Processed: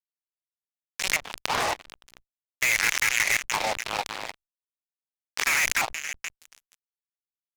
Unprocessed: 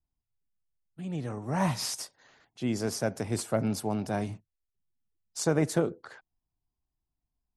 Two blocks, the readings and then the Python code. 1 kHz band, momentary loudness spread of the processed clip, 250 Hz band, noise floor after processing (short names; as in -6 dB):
+7.0 dB, 15 LU, -16.0 dB, under -85 dBFS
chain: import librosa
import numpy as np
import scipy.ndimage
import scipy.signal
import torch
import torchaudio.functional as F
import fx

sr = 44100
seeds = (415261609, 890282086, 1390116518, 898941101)

y = fx.rattle_buzz(x, sr, strikes_db=-32.0, level_db=-28.0)
y = fx.spec_gate(y, sr, threshold_db=-20, keep='weak')
y = fx.graphic_eq(y, sr, hz=(500, 2000, 4000, 8000), db=(4, 6, 6, -6))
y = fx.filter_lfo_lowpass(y, sr, shape='square', hz=0.43, low_hz=870.0, high_hz=2100.0, q=3.3)
y = fx.echo_feedback(y, sr, ms=473, feedback_pct=46, wet_db=-16.0)
y = fx.fuzz(y, sr, gain_db=36.0, gate_db=-41.0)
y = fx.level_steps(y, sr, step_db=11)
y = fx.high_shelf(y, sr, hz=2100.0, db=10.0)
y = fx.pre_swell(y, sr, db_per_s=63.0)
y = F.gain(torch.from_numpy(y), -6.0).numpy()